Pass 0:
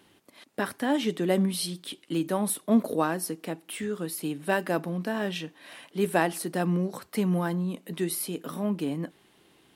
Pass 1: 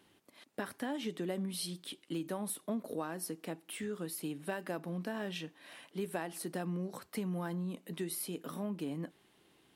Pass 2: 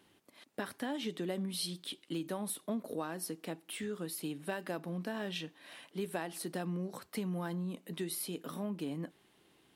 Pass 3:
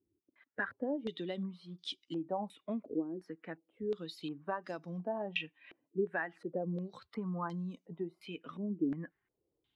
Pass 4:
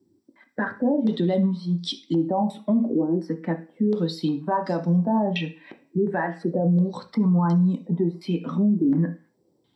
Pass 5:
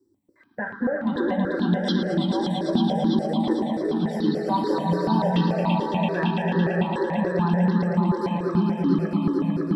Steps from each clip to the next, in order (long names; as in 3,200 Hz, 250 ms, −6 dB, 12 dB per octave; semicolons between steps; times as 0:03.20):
downward compressor 6 to 1, threshold −27 dBFS, peak gain reduction 10.5 dB; level −6.5 dB
dynamic equaliser 3,800 Hz, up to +4 dB, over −58 dBFS, Q 1.7
spectral dynamics exaggerated over time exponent 1.5; low-pass on a step sequencer 2.8 Hz 350–5,600 Hz
convolution reverb RT60 0.35 s, pre-delay 3 ms, DRR 3.5 dB; brickwall limiter −22 dBFS, peak gain reduction 11 dB; level +7.5 dB
echo that builds up and dies away 112 ms, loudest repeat 5, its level −4.5 dB; step-sequenced phaser 6.9 Hz 680–2,400 Hz